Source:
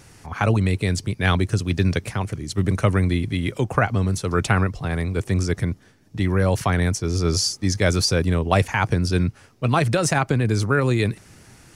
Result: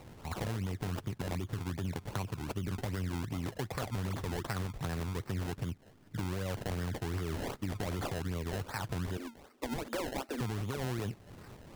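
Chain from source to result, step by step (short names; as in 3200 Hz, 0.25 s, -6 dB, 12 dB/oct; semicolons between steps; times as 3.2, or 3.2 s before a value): limiter -14.5 dBFS, peak gain reduction 10 dB; 4.04–4.43 painted sound fall 300–9700 Hz -32 dBFS; 9.17–10.41 Chebyshev high-pass 230 Hz, order 10; compressor 3:1, threshold -33 dBFS, peak gain reduction 11 dB; decimation with a swept rate 26×, swing 100% 2.6 Hz; gain -3 dB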